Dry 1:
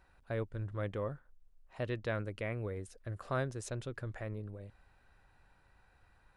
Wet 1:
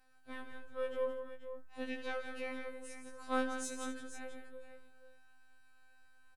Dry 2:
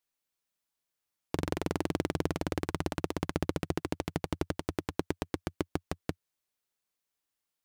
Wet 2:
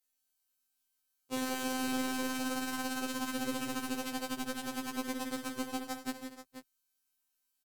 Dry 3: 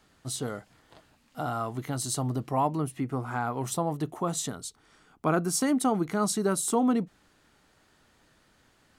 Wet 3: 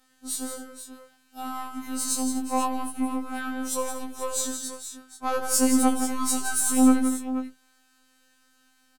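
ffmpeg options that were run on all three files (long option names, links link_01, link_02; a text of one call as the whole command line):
ffmpeg -i in.wav -filter_complex "[0:a]aeval=exprs='0.237*(cos(1*acos(clip(val(0)/0.237,-1,1)))-cos(1*PI/2))+0.0106*(cos(7*acos(clip(val(0)/0.237,-1,1)))-cos(7*PI/2))+0.0075*(cos(8*acos(clip(val(0)/0.237,-1,1)))-cos(8*PI/2))':channel_layout=same,afftfilt=real='hypot(re,im)*cos(PI*b)':imag='0':win_size=2048:overlap=0.75,aemphasis=mode=production:type=cd,asplit=2[link_01][link_02];[link_02]aecho=0:1:69|98|169|238|483:0.224|0.158|0.376|0.15|0.266[link_03];[link_01][link_03]amix=inputs=2:normalize=0,afftfilt=real='re*2.45*eq(mod(b,6),0)':imag='im*2.45*eq(mod(b,6),0)':win_size=2048:overlap=0.75,volume=3.5dB" out.wav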